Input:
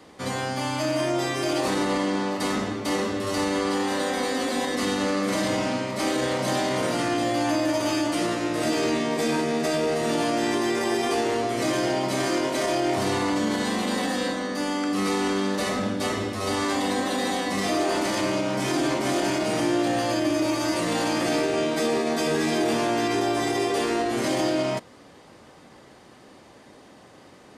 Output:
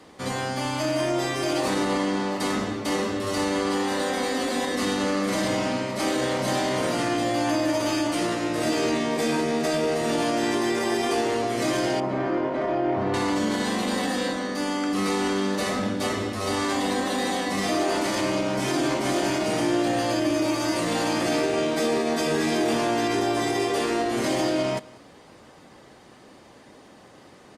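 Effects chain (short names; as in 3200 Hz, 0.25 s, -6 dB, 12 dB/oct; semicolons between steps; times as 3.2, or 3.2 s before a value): 12–13.14 LPF 1500 Hz 12 dB/oct; echo 0.189 s -22.5 dB; Opus 48 kbps 48000 Hz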